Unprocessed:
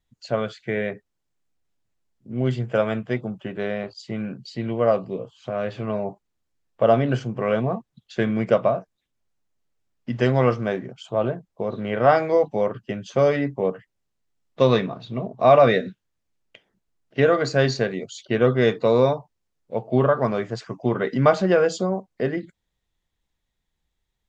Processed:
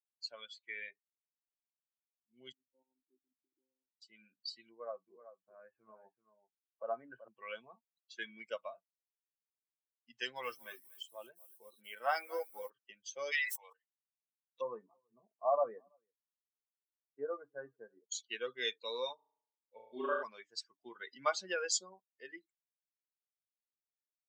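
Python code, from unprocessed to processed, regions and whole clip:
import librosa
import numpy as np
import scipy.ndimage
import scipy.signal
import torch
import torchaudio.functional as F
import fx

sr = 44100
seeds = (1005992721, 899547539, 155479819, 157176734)

y = fx.chain(x, sr, fx.lpc_monotone(seeds[0], pitch_hz=130.0, order=10),
    fx.formant_cascade(vowel='u'), at=(2.52, 4.02))
y = fx.chain(y, sr, fx.lowpass(hz=1700.0, slope=24),
    fx.echo_single(ms=381, db=-6.5), at=(4.69, 7.28))
y = fx.chain(y, sr, fx.highpass(hz=67.0, slope=12),
    fx.echo_crushed(ms=240, feedback_pct=35, bits=7, wet_db=-11.0), at=(10.12, 12.7))
y = fx.chain(y, sr, fx.cheby2_highpass(hz=200.0, order=4, stop_db=50),
    fx.tilt_shelf(db=-7.0, hz=790.0),
    fx.sustainer(db_per_s=28.0), at=(13.32, 13.73))
y = fx.chain(y, sr, fx.lowpass(hz=1200.0, slope=24),
    fx.doubler(ms=14.0, db=-12),
    fx.echo_single(ms=330, db=-19.5), at=(14.61, 18.12))
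y = fx.chain(y, sr, fx.dynamic_eq(hz=790.0, q=4.9, threshold_db=-41.0, ratio=4.0, max_db=-5),
    fx.room_flutter(wall_m=6.0, rt60_s=1.4), at=(19.15, 20.23))
y = fx.bin_expand(y, sr, power=2.0)
y = scipy.signal.sosfilt(scipy.signal.butter(2, 330.0, 'highpass', fs=sr, output='sos'), y)
y = np.diff(y, prepend=0.0)
y = F.gain(torch.from_numpy(y), 6.0).numpy()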